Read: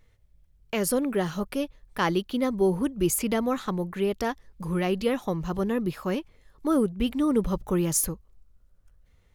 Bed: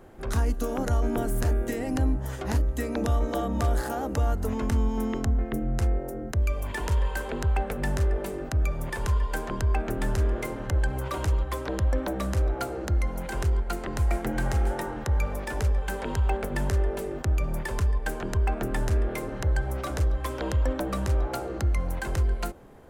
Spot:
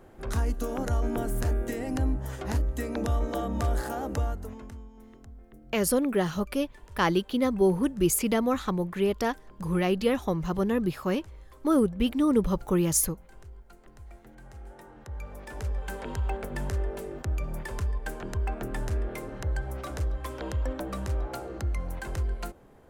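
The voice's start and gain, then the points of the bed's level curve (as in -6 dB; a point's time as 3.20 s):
5.00 s, +0.5 dB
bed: 4.18 s -2.5 dB
4.90 s -23 dB
14.39 s -23 dB
15.85 s -5 dB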